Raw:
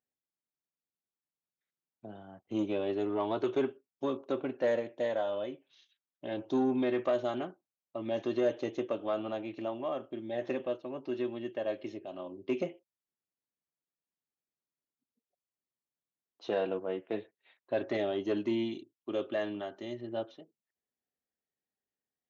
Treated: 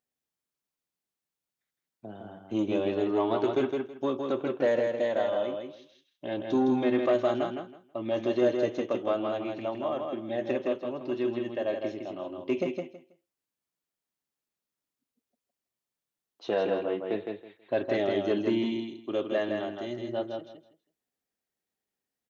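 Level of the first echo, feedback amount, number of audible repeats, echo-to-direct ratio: -4.5 dB, 20%, 3, -4.5 dB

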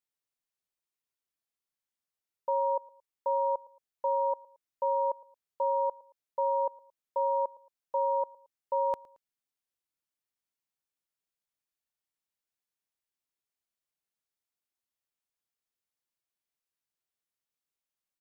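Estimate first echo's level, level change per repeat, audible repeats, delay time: -22.5 dB, -9.0 dB, 2, 0.112 s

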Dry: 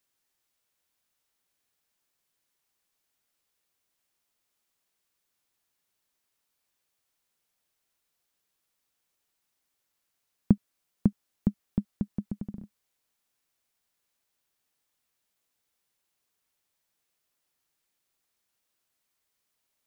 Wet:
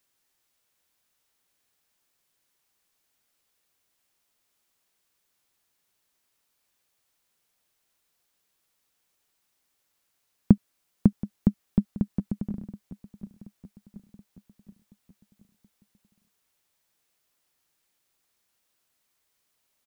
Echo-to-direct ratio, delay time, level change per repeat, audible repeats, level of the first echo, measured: -16.0 dB, 0.727 s, -5.0 dB, 4, -17.5 dB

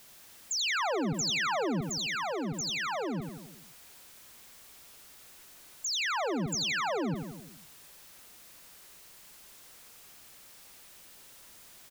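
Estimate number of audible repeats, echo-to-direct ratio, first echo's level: 6, -4.5 dB, -6.5 dB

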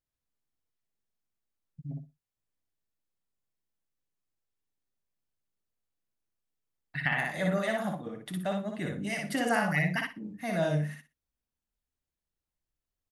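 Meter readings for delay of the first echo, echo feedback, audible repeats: 60 ms, 19%, 3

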